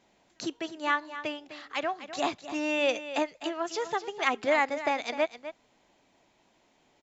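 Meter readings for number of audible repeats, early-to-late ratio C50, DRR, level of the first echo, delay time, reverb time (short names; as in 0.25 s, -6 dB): 1, none, none, -12.5 dB, 0.254 s, none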